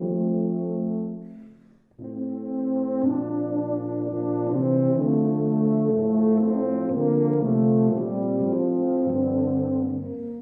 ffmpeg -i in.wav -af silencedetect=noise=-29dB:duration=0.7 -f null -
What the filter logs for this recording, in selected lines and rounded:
silence_start: 1.17
silence_end: 2.02 | silence_duration: 0.85